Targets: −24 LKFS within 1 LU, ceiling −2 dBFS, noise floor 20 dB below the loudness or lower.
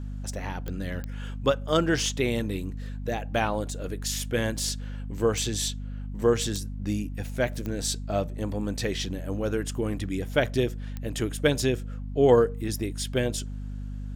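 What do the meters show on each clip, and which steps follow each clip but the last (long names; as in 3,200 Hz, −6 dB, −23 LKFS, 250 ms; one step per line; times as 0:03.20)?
number of clicks 6; mains hum 50 Hz; hum harmonics up to 250 Hz; level of the hum −32 dBFS; integrated loudness −28.0 LKFS; sample peak −7.5 dBFS; target loudness −24.0 LKFS
→ click removal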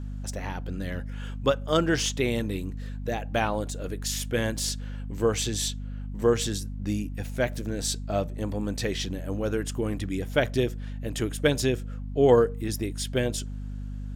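number of clicks 0; mains hum 50 Hz; hum harmonics up to 250 Hz; level of the hum −32 dBFS
→ hum removal 50 Hz, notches 5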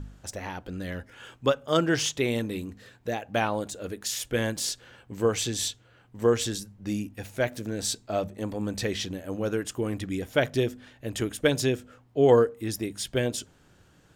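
mains hum none found; integrated loudness −28.5 LKFS; sample peak −8.0 dBFS; target loudness −24.0 LKFS
→ level +4.5 dB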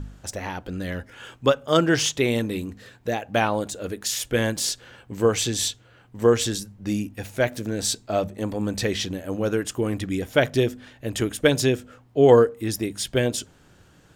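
integrated loudness −24.0 LKFS; sample peak −3.5 dBFS; background noise floor −55 dBFS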